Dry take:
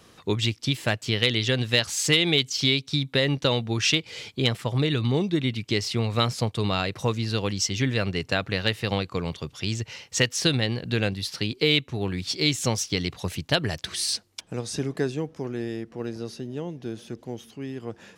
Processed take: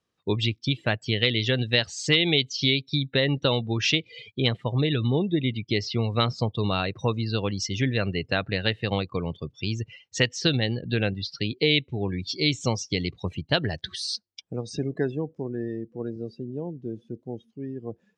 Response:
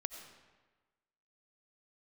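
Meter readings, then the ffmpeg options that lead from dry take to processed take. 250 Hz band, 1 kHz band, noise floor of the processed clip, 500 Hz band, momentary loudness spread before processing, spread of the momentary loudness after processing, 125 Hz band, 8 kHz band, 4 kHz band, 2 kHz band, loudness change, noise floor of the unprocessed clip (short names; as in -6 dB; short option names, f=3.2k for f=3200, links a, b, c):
0.0 dB, -0.5 dB, -70 dBFS, 0.0 dB, 12 LU, 12 LU, 0.0 dB, -7.5 dB, -1.0 dB, -0.5 dB, -0.5 dB, -56 dBFS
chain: -filter_complex "[0:a]lowpass=8.5k,afftdn=nr=27:nf=-35,acrossover=split=5800[a][b];[b]acompressor=threshold=-44dB:ratio=4:attack=1:release=60[c];[a][c]amix=inputs=2:normalize=0"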